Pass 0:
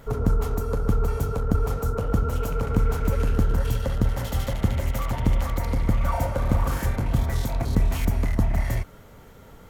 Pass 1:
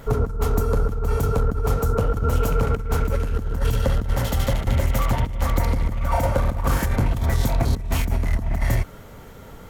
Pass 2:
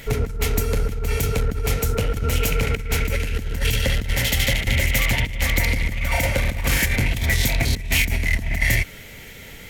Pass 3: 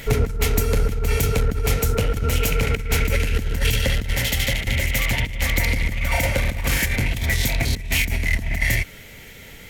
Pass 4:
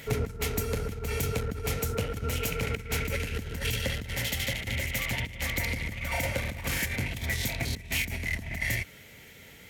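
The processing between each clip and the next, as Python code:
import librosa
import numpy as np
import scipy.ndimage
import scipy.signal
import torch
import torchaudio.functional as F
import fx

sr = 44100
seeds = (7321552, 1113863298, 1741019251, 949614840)

y1 = fx.over_compress(x, sr, threshold_db=-23.0, ratio=-0.5)
y1 = y1 * librosa.db_to_amplitude(4.0)
y2 = fx.high_shelf_res(y1, sr, hz=1600.0, db=10.0, q=3.0)
y2 = y2 * librosa.db_to_amplitude(-1.0)
y3 = fx.rider(y2, sr, range_db=10, speed_s=0.5)
y4 = scipy.signal.sosfilt(scipy.signal.butter(2, 71.0, 'highpass', fs=sr, output='sos'), y3)
y4 = y4 * librosa.db_to_amplitude(-8.0)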